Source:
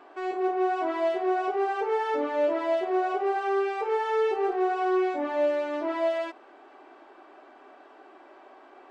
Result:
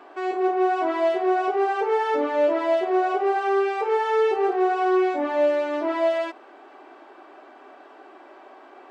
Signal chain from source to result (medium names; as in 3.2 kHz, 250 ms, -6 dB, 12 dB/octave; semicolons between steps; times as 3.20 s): high-pass 140 Hz 12 dB/octave; trim +4.5 dB